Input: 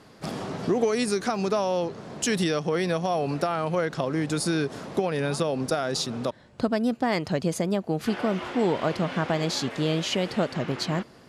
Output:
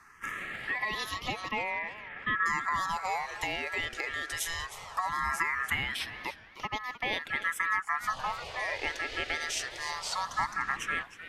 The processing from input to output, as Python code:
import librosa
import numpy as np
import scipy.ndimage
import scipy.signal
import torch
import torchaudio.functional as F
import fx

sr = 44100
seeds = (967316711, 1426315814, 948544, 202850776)

y = fx.steep_lowpass(x, sr, hz=2200.0, slope=72, at=(1.51, 2.46))
y = y * np.sin(2.0 * np.pi * 1500.0 * np.arange(len(y)) / sr)
y = fx.phaser_stages(y, sr, stages=4, low_hz=170.0, high_hz=1600.0, hz=0.19, feedback_pct=5)
y = fx.echo_warbled(y, sr, ms=304, feedback_pct=34, rate_hz=2.8, cents=204, wet_db=-14.0)